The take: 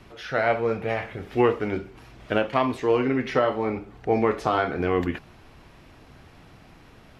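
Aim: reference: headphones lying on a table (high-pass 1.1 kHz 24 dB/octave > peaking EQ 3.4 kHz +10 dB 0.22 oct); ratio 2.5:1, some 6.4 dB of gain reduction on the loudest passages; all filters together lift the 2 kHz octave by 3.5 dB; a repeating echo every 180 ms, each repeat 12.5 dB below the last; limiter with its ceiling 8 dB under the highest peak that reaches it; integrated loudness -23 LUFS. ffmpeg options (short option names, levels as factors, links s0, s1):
-af "equalizer=f=2000:t=o:g=4.5,acompressor=threshold=0.0562:ratio=2.5,alimiter=limit=0.119:level=0:latency=1,highpass=f=1100:w=0.5412,highpass=f=1100:w=1.3066,equalizer=f=3400:t=o:w=0.22:g=10,aecho=1:1:180|360|540:0.237|0.0569|0.0137,volume=4.47"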